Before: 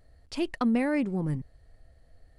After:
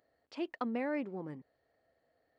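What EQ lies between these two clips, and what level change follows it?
HPF 370 Hz 12 dB/oct; tape spacing loss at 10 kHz 36 dB; high shelf 3800 Hz +10.5 dB; -3.0 dB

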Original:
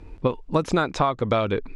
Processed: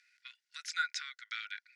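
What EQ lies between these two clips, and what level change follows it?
rippled Chebyshev high-pass 1400 Hz, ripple 9 dB; 0.0 dB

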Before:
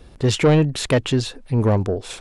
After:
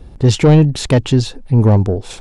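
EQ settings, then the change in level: low shelf 390 Hz +11.5 dB; dynamic EQ 5500 Hz, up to +6 dB, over -39 dBFS, Q 0.81; bell 840 Hz +6 dB 0.32 oct; -2.0 dB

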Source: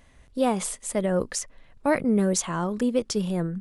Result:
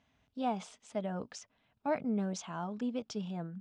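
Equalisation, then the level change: dynamic EQ 690 Hz, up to +5 dB, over -36 dBFS, Q 1.5; speaker cabinet 130–5400 Hz, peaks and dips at 160 Hz -3 dB, 360 Hz -9 dB, 510 Hz -7 dB, 1100 Hz -5 dB, 1900 Hz -9 dB, 4400 Hz -6 dB; notch 550 Hz, Q 12; -9.0 dB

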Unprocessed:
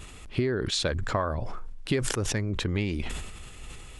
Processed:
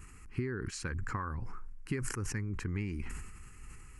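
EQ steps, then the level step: fixed phaser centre 1500 Hz, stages 4; -6.0 dB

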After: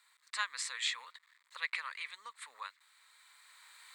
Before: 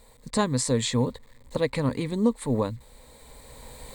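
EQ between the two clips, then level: Chebyshev high-pass 1300 Hz, order 4; dynamic EQ 2400 Hz, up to +6 dB, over -51 dBFS, Q 1.4; tilt -4 dB/oct; +1.0 dB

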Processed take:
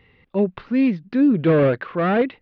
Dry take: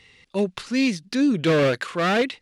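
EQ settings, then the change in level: air absorption 260 m; tape spacing loss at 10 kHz 31 dB; +5.0 dB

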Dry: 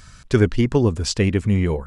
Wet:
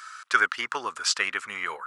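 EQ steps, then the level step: resonant high-pass 1300 Hz, resonance Q 4.8; 0.0 dB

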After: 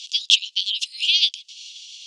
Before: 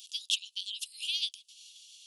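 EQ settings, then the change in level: resonant high-pass 2000 Hz, resonance Q 3.3; air absorption 120 m; bell 5900 Hz +15 dB 2.2 oct; +4.0 dB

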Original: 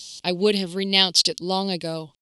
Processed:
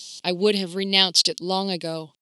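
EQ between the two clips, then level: HPF 140 Hz; 0.0 dB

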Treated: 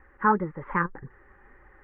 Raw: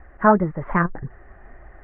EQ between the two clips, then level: Butterworth band-stop 670 Hz, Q 3.1; low shelf 230 Hz -9.5 dB; -3.5 dB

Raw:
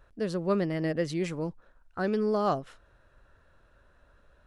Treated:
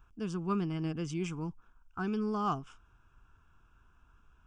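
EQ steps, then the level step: fixed phaser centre 2800 Hz, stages 8; -1.0 dB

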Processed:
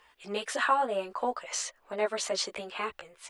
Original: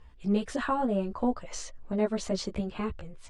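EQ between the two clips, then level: three-band isolator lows -18 dB, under 380 Hz, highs -13 dB, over 3100 Hz; tilt +3 dB/oct; high shelf 5400 Hz +10 dB; +4.5 dB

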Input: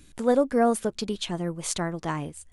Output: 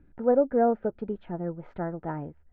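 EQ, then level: LPF 1500 Hz 24 dB/oct; dynamic EQ 540 Hz, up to +4 dB, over -34 dBFS, Q 1.3; Butterworth band-stop 1100 Hz, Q 5.1; -3.5 dB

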